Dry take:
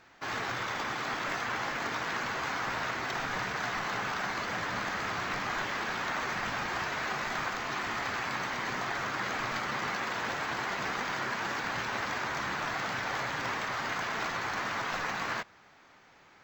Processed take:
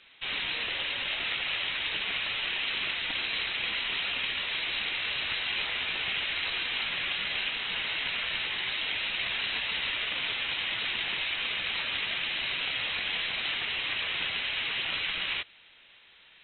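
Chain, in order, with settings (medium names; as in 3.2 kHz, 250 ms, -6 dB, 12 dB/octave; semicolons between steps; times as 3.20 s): frequency inversion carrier 4 kHz; trim +2 dB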